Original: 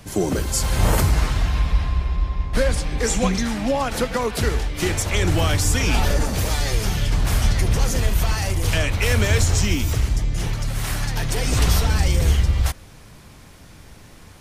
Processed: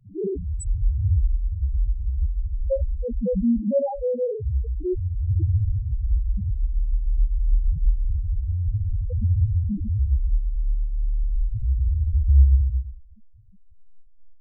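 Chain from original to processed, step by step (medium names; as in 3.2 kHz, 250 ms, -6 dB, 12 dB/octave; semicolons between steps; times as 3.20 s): Schroeder reverb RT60 0.74 s, combs from 30 ms, DRR -6.5 dB; loudest bins only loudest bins 1; trim -1 dB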